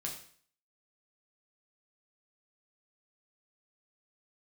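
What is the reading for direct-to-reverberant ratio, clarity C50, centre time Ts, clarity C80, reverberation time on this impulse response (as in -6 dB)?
-1.5 dB, 7.0 dB, 26 ms, 10.0 dB, 0.50 s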